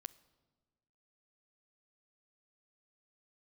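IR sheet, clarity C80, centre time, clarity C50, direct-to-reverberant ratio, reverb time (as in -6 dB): 21.5 dB, 2 ms, 19.5 dB, 15.0 dB, 1.4 s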